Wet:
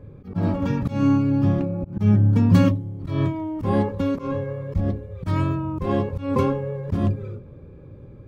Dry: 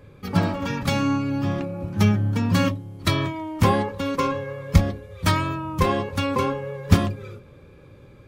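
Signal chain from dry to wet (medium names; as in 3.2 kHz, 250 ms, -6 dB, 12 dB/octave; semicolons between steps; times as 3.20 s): slow attack 161 ms; tilt shelf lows +6.5 dB, about 720 Hz; tape noise reduction on one side only decoder only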